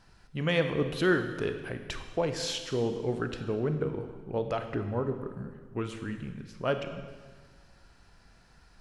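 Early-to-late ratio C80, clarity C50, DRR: 9.5 dB, 8.0 dB, 7.0 dB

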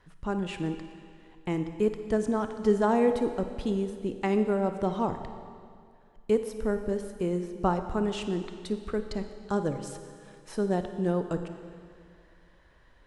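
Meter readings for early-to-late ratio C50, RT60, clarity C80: 8.5 dB, 2.2 s, 9.5 dB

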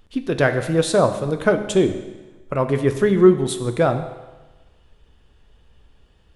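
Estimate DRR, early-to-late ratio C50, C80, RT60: 8.0 dB, 10.5 dB, 12.0 dB, 1.2 s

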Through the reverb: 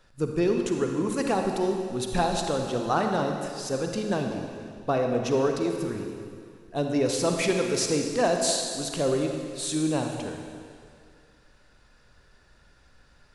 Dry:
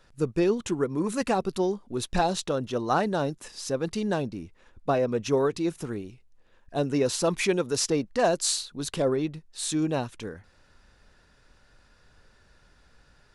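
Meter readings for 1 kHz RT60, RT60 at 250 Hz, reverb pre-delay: 2.3 s, 2.1 s, 37 ms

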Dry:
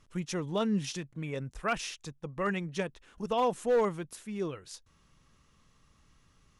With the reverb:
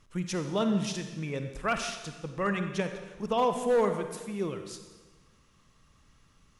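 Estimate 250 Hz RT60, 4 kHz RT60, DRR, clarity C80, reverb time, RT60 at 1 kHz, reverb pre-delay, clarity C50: 1.3 s, 1.2 s, 7.0 dB, 9.0 dB, 1.3 s, 1.3 s, 39 ms, 7.5 dB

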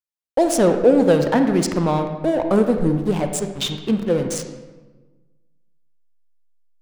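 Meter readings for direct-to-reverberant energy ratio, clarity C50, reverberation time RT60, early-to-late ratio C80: 6.0 dB, 7.0 dB, 1.2 s, 8.5 dB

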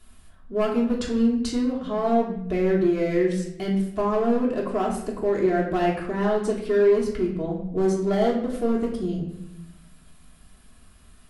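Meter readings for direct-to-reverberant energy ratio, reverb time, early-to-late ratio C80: -4.5 dB, 0.80 s, 8.0 dB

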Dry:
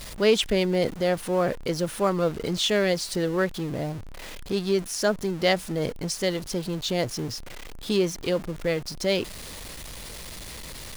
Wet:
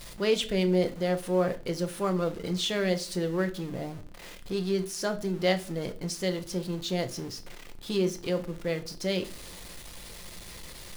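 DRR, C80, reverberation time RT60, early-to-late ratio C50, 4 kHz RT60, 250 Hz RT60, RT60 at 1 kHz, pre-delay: 7.0 dB, 22.5 dB, 0.45 s, 16.5 dB, 0.35 s, 0.70 s, 0.35 s, 6 ms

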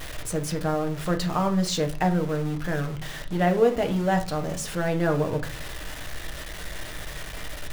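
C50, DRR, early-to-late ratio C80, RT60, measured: 13.5 dB, 4.5 dB, 18.5 dB, 0.45 s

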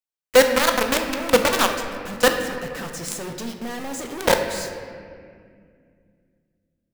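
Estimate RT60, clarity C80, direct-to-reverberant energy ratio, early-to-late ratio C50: 2.1 s, 7.0 dB, 4.0 dB, 6.0 dB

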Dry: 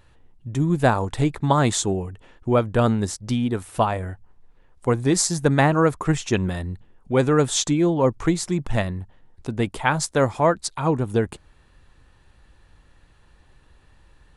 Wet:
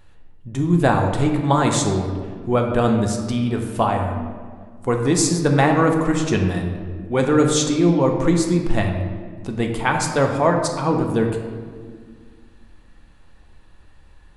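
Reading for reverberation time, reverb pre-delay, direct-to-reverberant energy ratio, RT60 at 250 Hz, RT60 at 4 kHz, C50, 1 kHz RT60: 1.8 s, 3 ms, 2.0 dB, 2.6 s, 1.0 s, 5.0 dB, 1.6 s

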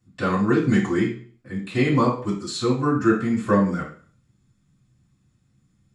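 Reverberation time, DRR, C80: 0.45 s, -15.0 dB, 11.0 dB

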